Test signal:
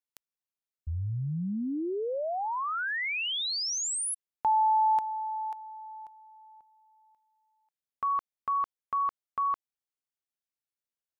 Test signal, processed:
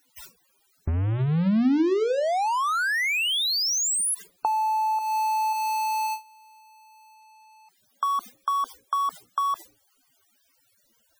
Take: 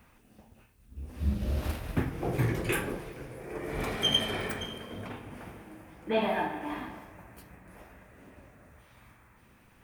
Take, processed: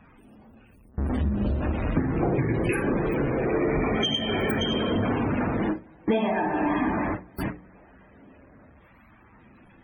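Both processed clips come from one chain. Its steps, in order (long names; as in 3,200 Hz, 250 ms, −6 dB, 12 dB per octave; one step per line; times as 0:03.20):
converter with a step at zero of −30.5 dBFS
noise gate with hold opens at −30 dBFS, closes at −34 dBFS, hold 57 ms, range −25 dB
mains-hum notches 60/120/180/240/300/360/420/480/540 Hz
downward compressor 12 to 1, threshold −31 dBFS
spectral peaks only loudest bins 64
parametric band 260 Hz +6 dB 1.5 octaves
level +7.5 dB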